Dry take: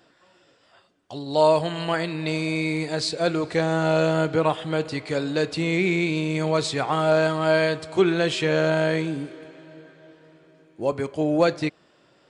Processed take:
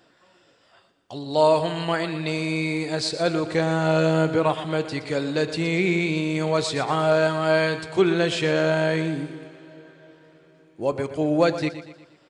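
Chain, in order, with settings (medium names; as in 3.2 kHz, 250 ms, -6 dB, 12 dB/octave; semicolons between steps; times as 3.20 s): feedback delay 119 ms, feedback 47%, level -12.5 dB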